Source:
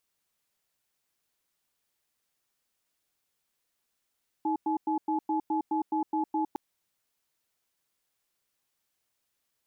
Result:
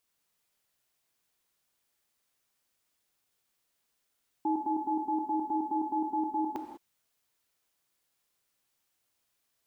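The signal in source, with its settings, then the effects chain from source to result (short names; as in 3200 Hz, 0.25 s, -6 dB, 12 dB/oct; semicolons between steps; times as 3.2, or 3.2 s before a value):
cadence 315 Hz, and 854 Hz, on 0.11 s, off 0.10 s, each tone -28 dBFS 2.11 s
non-linear reverb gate 0.22 s flat, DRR 4 dB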